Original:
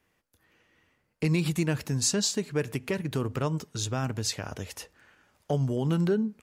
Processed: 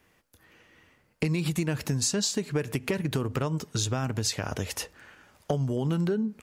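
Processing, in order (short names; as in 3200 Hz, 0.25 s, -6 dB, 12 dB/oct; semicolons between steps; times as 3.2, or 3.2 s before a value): compressor, threshold -32 dBFS, peak gain reduction 10.5 dB; gain +7.5 dB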